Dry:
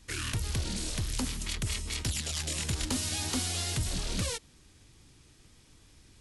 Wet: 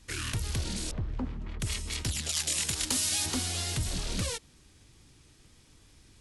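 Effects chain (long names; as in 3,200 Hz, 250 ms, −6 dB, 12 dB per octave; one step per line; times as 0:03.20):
0:00.91–0:01.60: low-pass filter 1,100 Hz 12 dB per octave
0:02.29–0:03.26: spectral tilt +2 dB per octave
Opus 96 kbit/s 48,000 Hz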